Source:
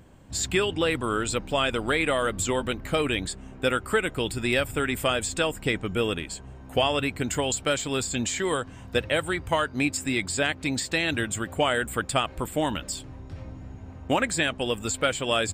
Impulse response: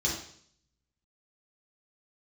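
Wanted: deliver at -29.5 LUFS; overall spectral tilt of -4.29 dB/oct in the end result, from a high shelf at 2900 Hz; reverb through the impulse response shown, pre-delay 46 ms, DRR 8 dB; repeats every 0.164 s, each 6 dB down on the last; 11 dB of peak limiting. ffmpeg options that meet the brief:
-filter_complex "[0:a]highshelf=f=2.9k:g=-6.5,alimiter=limit=-21dB:level=0:latency=1,aecho=1:1:164|328|492|656|820|984:0.501|0.251|0.125|0.0626|0.0313|0.0157,asplit=2[a][b];[1:a]atrim=start_sample=2205,adelay=46[c];[b][c]afir=irnorm=-1:irlink=0,volume=-15.5dB[d];[a][d]amix=inputs=2:normalize=0,volume=0.5dB"

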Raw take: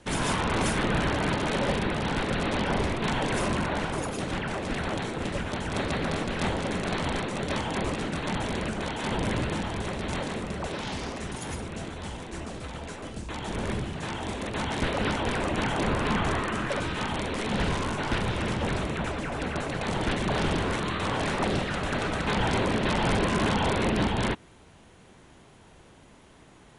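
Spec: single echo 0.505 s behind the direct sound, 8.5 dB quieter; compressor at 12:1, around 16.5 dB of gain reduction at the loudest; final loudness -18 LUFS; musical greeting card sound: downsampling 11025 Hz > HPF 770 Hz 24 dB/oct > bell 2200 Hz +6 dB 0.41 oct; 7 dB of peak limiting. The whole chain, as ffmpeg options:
-af "acompressor=threshold=-39dB:ratio=12,alimiter=level_in=12dB:limit=-24dB:level=0:latency=1,volume=-12dB,aecho=1:1:505:0.376,aresample=11025,aresample=44100,highpass=f=770:w=0.5412,highpass=f=770:w=1.3066,equalizer=f=2.2k:t=o:w=0.41:g=6,volume=28.5dB"

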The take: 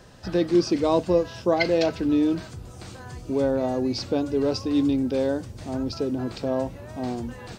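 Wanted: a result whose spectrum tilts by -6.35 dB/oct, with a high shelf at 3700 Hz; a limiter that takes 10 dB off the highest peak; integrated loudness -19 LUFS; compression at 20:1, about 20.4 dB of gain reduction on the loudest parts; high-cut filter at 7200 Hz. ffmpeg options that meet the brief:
-af "lowpass=7.2k,highshelf=f=3.7k:g=-8.5,acompressor=threshold=-35dB:ratio=20,volume=23.5dB,alimiter=limit=-10dB:level=0:latency=1"

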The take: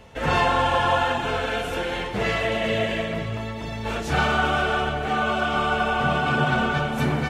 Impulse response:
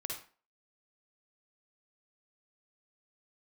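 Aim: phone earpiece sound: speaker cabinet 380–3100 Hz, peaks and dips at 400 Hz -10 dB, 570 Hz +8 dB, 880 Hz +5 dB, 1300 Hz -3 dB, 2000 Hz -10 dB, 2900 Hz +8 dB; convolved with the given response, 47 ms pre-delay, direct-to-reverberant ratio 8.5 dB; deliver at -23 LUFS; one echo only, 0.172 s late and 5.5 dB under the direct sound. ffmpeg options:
-filter_complex "[0:a]aecho=1:1:172:0.531,asplit=2[a][b];[1:a]atrim=start_sample=2205,adelay=47[c];[b][c]afir=irnorm=-1:irlink=0,volume=-8.5dB[d];[a][d]amix=inputs=2:normalize=0,highpass=380,equalizer=f=400:t=q:w=4:g=-10,equalizer=f=570:t=q:w=4:g=8,equalizer=f=880:t=q:w=4:g=5,equalizer=f=1.3k:t=q:w=4:g=-3,equalizer=f=2k:t=q:w=4:g=-10,equalizer=f=2.9k:t=q:w=4:g=8,lowpass=f=3.1k:w=0.5412,lowpass=f=3.1k:w=1.3066,volume=-2dB"

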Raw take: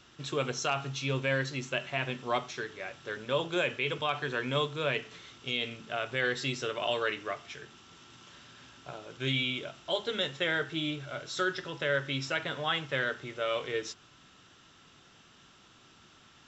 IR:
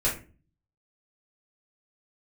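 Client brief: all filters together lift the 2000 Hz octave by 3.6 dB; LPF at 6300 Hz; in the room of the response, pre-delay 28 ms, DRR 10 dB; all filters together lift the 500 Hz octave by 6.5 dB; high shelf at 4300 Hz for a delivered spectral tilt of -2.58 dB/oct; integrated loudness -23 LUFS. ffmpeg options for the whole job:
-filter_complex "[0:a]lowpass=6.3k,equalizer=f=500:t=o:g=7.5,equalizer=f=2k:t=o:g=5.5,highshelf=f=4.3k:g=-6,asplit=2[a][b];[1:a]atrim=start_sample=2205,adelay=28[c];[b][c]afir=irnorm=-1:irlink=0,volume=-20dB[d];[a][d]amix=inputs=2:normalize=0,volume=5dB"

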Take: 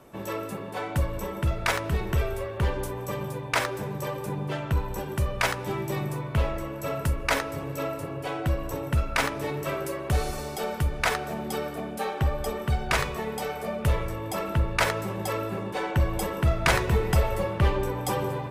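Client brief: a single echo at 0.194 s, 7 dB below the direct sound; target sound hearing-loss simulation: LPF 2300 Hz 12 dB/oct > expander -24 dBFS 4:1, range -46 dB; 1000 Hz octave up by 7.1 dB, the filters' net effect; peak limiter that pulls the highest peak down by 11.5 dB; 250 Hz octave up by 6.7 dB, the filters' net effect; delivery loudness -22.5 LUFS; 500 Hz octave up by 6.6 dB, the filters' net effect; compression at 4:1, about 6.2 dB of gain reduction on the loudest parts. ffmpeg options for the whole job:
-af "equalizer=f=250:t=o:g=8,equalizer=f=500:t=o:g=4,equalizer=f=1k:t=o:g=7.5,acompressor=threshold=-22dB:ratio=4,alimiter=limit=-21dB:level=0:latency=1,lowpass=2.3k,aecho=1:1:194:0.447,agate=range=-46dB:threshold=-24dB:ratio=4,volume=10dB"

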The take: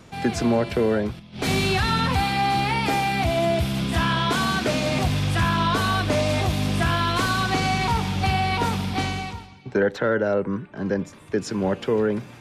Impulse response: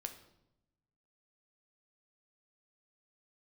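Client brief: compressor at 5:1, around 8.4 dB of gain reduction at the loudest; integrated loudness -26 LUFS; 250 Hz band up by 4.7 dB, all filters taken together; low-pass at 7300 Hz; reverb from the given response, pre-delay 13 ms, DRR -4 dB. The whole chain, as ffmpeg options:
-filter_complex "[0:a]lowpass=7.3k,equalizer=f=250:t=o:g=6,acompressor=threshold=-22dB:ratio=5,asplit=2[a][b];[1:a]atrim=start_sample=2205,adelay=13[c];[b][c]afir=irnorm=-1:irlink=0,volume=6.5dB[d];[a][d]amix=inputs=2:normalize=0,volume=-5dB"

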